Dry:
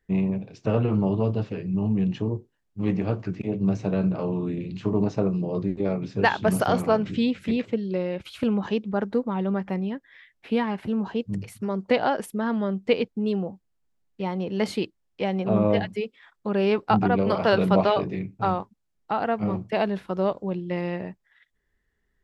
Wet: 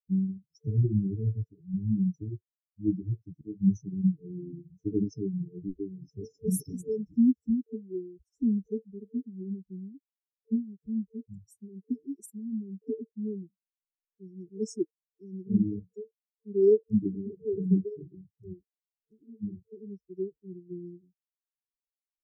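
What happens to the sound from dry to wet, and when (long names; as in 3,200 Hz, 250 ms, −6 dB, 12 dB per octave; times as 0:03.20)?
0:16.96–0:17.87: Chebyshev band-stop filter 1,500–7,000 Hz, order 4
whole clip: spectral dynamics exaggerated over time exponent 3; dynamic equaliser 800 Hz, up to +7 dB, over −44 dBFS, Q 0.86; brick-wall band-stop 450–5,200 Hz; level +4 dB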